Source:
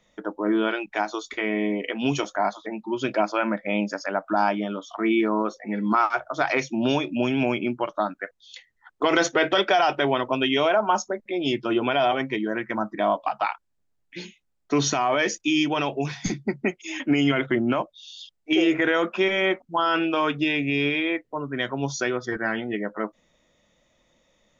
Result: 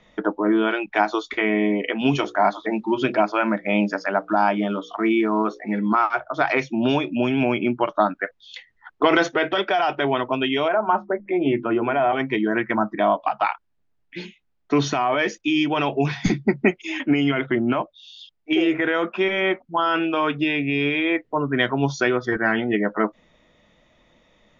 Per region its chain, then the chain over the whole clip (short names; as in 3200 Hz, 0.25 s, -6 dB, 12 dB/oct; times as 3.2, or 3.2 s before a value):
1.99–5.78 notches 60/120/180/240/300/360/420/480/540 Hz + companded quantiser 8-bit
10.68–12.13 LPF 2200 Hz 24 dB/oct + notches 50/100/150/200/250/300/350 Hz
whole clip: LPF 3600 Hz 12 dB/oct; notch 540 Hz, Q 12; vocal rider 0.5 s; gain +3 dB